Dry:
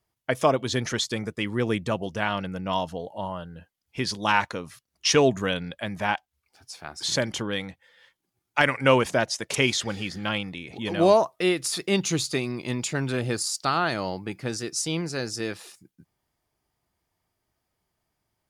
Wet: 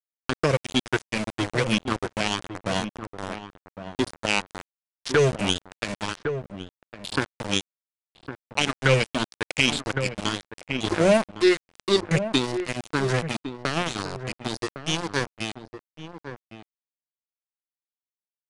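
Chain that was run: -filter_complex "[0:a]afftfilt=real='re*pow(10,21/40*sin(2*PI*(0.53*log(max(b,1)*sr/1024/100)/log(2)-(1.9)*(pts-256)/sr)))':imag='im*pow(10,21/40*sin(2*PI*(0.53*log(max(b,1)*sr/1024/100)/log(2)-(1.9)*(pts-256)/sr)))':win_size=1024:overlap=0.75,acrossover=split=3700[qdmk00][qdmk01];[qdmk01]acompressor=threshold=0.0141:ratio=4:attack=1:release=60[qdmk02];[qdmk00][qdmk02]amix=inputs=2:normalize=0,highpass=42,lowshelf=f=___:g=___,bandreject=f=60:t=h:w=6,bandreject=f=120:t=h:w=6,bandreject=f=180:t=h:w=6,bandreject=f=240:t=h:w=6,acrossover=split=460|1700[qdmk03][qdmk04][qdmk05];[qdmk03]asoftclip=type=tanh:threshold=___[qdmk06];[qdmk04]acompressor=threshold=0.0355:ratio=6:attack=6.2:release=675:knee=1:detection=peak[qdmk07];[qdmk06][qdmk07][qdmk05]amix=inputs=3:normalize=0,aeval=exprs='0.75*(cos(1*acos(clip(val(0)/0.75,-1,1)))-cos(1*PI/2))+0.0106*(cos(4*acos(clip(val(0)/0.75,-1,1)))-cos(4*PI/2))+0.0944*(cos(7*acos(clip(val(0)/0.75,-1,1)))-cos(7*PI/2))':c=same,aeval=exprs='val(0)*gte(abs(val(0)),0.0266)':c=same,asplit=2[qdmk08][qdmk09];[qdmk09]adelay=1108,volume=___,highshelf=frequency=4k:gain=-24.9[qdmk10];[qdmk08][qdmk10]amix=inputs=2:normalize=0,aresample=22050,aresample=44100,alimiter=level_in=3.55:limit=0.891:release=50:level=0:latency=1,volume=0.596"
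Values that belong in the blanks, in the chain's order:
390, 6.5, 0.158, 0.316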